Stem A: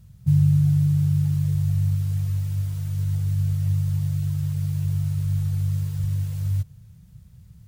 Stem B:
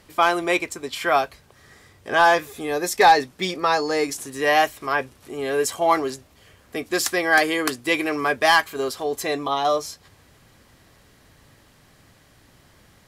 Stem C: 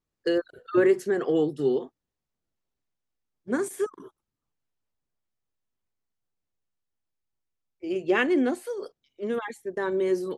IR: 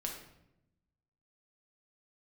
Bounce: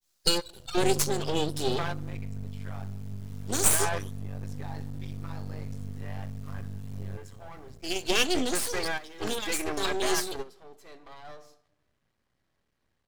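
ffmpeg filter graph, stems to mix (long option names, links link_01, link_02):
-filter_complex "[0:a]acompressor=threshold=-28dB:ratio=4,adelay=550,volume=-4dB,asplit=2[link_01][link_02];[link_02]volume=-7dB[link_03];[1:a]aeval=exprs='if(lt(val(0),0),0.708*val(0),val(0))':channel_layout=same,alimiter=limit=-14.5dB:level=0:latency=1:release=29,adelay=1600,volume=-5dB,asplit=2[link_04][link_05];[link_05]volume=-23.5dB[link_06];[2:a]aexciter=amount=13.7:drive=9.3:freq=3100,adynamicequalizer=threshold=0.0224:dfrequency=1700:dqfactor=0.7:tfrequency=1700:tqfactor=0.7:attack=5:release=100:ratio=0.375:range=2.5:mode=cutabove:tftype=highshelf,volume=-2dB,asplit=3[link_07][link_08][link_09];[link_08]volume=-18dB[link_10];[link_09]apad=whole_len=647369[link_11];[link_04][link_11]sidechaingate=range=-19dB:threshold=-41dB:ratio=16:detection=peak[link_12];[3:a]atrim=start_sample=2205[link_13];[link_03][link_06][link_10]amix=inputs=3:normalize=0[link_14];[link_14][link_13]afir=irnorm=-1:irlink=0[link_15];[link_01][link_12][link_07][link_15]amix=inputs=4:normalize=0,highshelf=frequency=6800:gain=-8.5,aeval=exprs='max(val(0),0)':channel_layout=same"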